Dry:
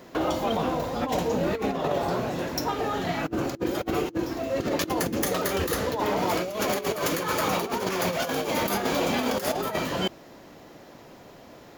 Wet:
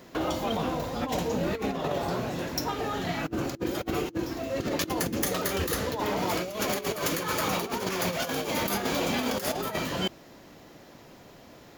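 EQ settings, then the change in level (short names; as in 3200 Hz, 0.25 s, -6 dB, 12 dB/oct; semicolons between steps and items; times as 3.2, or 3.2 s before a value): bell 640 Hz -4 dB 2.8 oct; 0.0 dB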